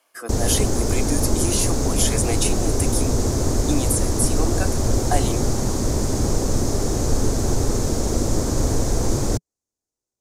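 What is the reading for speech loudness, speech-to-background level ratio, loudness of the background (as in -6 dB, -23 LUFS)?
-25.5 LUFS, -3.0 dB, -22.5 LUFS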